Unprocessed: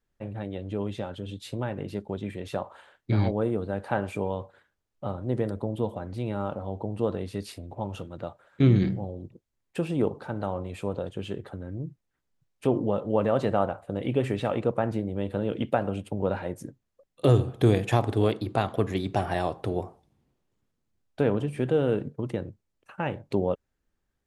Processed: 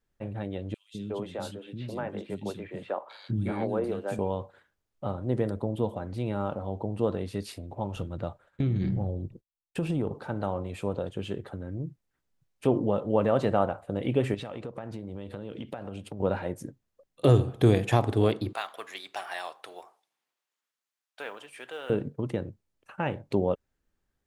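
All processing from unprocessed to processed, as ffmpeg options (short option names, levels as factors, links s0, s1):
-filter_complex "[0:a]asettb=1/sr,asplit=3[s0][s1][s2];[s0]atrim=end=0.744[s3];[s1]atrim=start=0.74:end=4.19,asetpts=PTS-STARTPTS,afade=t=in:d=0.004:c=qsin,afade=t=out:st=3.446:d=0.004:c=qsin,highpass=140,acrossover=split=280|3000[s4][s5][s6];[s4]adelay=200[s7];[s5]adelay=360[s8];[s7][s8][s6]amix=inputs=3:normalize=0,atrim=end_sample=152145[s9];[s2]atrim=start=4.186[s10];[s3][s9]acrossfade=d=0.004:c1=hsin:c2=qsin[s11];[s11][s10]acrossfade=d=0.004:c1=qsin:c2=hsin,asettb=1/sr,asplit=3[s12][s13][s14];[s12]atrim=end=7.964[s15];[s13]atrim=start=7.96:end=10.13,asetpts=PTS-STARTPTS,afade=t=in:d=0.004:c=qsin,afade=t=out:st=2.166:d=0.004:c=qsin,agate=range=0.0224:threshold=0.00158:ratio=3:release=100:detection=peak,lowshelf=f=120:g=12,acompressor=threshold=0.0708:ratio=8:attack=3.2:release=140:knee=1:detection=peak[s16];[s14]atrim=start=10.126[s17];[s15][s16]acrossfade=d=0.004:c1=hsin:c2=qsin[s18];[s18][s17]acrossfade=d=0.004:c1=qsin:c2=hsin,asettb=1/sr,asplit=3[s19][s20][s21];[s19]atrim=end=14.344[s22];[s20]atrim=start=14.34:end=16.2,asetpts=PTS-STARTPTS,afade=t=in:d=0.004:c=qsin,afade=t=out:st=1.856:d=0.004:c=qsin,equalizer=f=4600:t=o:w=1.2:g=5,acompressor=threshold=0.02:ratio=6:attack=3.2:release=140:knee=1:detection=peak[s23];[s21]atrim=start=16.196[s24];[s22][s23]acrossfade=d=0.004:c1=hsin:c2=qsin[s25];[s25][s24]acrossfade=d=0.004:c1=qsin:c2=hsin,asettb=1/sr,asplit=3[s26][s27][s28];[s26]atrim=end=18.534[s29];[s27]atrim=start=18.53:end=21.9,asetpts=PTS-STARTPTS,afade=t=in:d=0.004:c=qsin,afade=t=out:st=3.366:d=0.004:c=qsin,highpass=1200,acrusher=bits=8:mode=log:mix=0:aa=0.000001[s30];[s28]atrim=start=21.896[s31];[s29][s30]acrossfade=d=0.004:c1=hsin:c2=qsin[s32];[s32][s31]acrossfade=d=0.004:c1=qsin:c2=hsin"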